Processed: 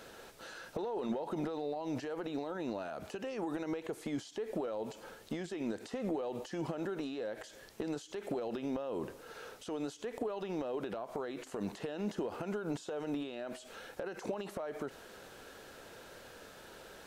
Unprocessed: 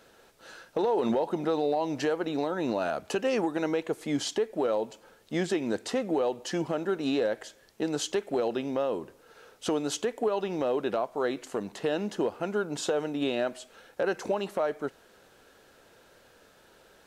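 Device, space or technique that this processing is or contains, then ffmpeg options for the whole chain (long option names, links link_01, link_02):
de-esser from a sidechain: -filter_complex "[0:a]asplit=2[link_01][link_02];[link_02]highpass=frequency=4700:poles=1,apad=whole_len=752393[link_03];[link_01][link_03]sidechaincompress=threshold=-58dB:ratio=10:attack=3.3:release=46,volume=5.5dB"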